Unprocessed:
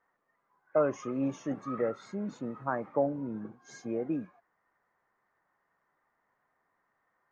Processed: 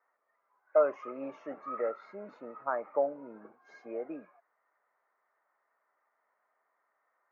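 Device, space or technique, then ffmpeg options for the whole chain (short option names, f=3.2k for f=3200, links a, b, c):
phone earpiece: -af "highpass=390,equalizer=f=440:t=q:w=4:g=3,equalizer=f=620:t=q:w=4:g=8,equalizer=f=900:t=q:w=4:g=3,equalizer=f=1.3k:t=q:w=4:g=7,equalizer=f=2.2k:t=q:w=4:g=5,equalizer=f=3.4k:t=q:w=4:g=-9,lowpass=f=4k:w=0.5412,lowpass=f=4k:w=1.3066,volume=-5dB"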